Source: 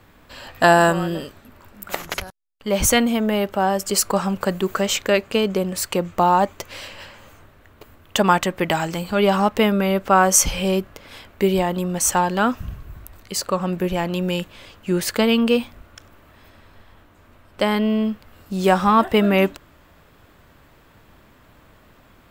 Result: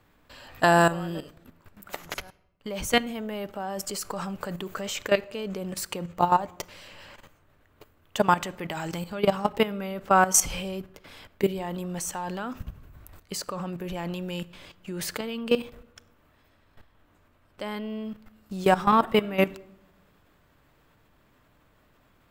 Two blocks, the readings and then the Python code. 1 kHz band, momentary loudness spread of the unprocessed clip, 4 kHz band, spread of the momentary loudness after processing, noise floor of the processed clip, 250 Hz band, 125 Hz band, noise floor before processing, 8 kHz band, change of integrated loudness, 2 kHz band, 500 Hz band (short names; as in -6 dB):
-6.0 dB, 15 LU, -8.0 dB, 18 LU, -63 dBFS, -9.5 dB, -8.0 dB, -52 dBFS, -7.5 dB, -7.5 dB, -6.5 dB, -7.5 dB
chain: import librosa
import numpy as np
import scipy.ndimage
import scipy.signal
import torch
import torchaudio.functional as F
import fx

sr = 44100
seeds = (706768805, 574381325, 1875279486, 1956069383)

y = fx.level_steps(x, sr, step_db=15)
y = fx.room_shoebox(y, sr, seeds[0], volume_m3=3000.0, walls='furnished', distance_m=0.41)
y = F.gain(torch.from_numpy(y), -2.5).numpy()